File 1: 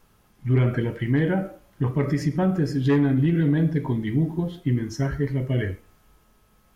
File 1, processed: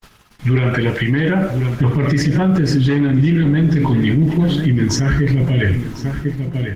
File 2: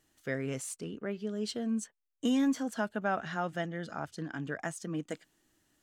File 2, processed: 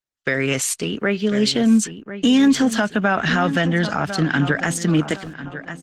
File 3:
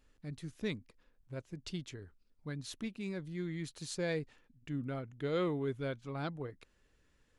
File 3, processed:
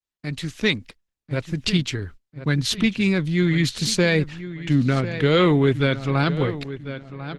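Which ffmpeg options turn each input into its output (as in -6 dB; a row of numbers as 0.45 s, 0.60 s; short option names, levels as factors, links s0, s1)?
-filter_complex "[0:a]agate=range=0.00398:threshold=0.00126:ratio=16:detection=peak,asplit=2[s0][s1];[s1]acompressor=threshold=0.0282:ratio=20,volume=1[s2];[s0][s2]amix=inputs=2:normalize=0,equalizer=f=3100:t=o:w=2.8:g=11.5,asplit=2[s3][s4];[s4]adelay=1046,lowpass=f=3600:p=1,volume=0.211,asplit=2[s5][s6];[s6]adelay=1046,lowpass=f=3600:p=1,volume=0.38,asplit=2[s7][s8];[s8]adelay=1046,lowpass=f=3600:p=1,volume=0.38,asplit=2[s9][s10];[s10]adelay=1046,lowpass=f=3600:p=1,volume=0.38[s11];[s3][s5][s7][s9][s11]amix=inputs=5:normalize=0,acrossover=split=290[s12][s13];[s12]dynaudnorm=f=290:g=9:m=2.24[s14];[s14][s13]amix=inputs=2:normalize=0,alimiter=level_in=5.31:limit=0.891:release=50:level=0:latency=1,volume=0.473" -ar 48000 -c:a libopus -b:a 16k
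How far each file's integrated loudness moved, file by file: +7.5 LU, +16.0 LU, +18.0 LU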